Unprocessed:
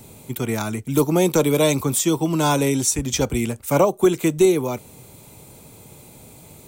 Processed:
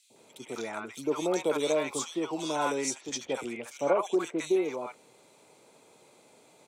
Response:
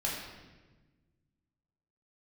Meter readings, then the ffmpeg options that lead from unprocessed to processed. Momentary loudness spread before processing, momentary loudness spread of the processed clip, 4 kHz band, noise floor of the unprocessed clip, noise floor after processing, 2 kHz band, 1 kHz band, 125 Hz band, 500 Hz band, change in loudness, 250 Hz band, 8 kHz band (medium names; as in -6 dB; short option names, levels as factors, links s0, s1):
8 LU, 11 LU, -10.0 dB, -46 dBFS, -60 dBFS, -8.0 dB, -8.0 dB, -24.5 dB, -9.5 dB, -11.0 dB, -13.0 dB, -13.0 dB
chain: -filter_complex "[0:a]highpass=460,lowpass=7000,highshelf=f=4800:g=-6.5,acrossover=split=830|2800[s0][s1][s2];[s0]adelay=100[s3];[s1]adelay=160[s4];[s3][s4][s2]amix=inputs=3:normalize=0,volume=0.562"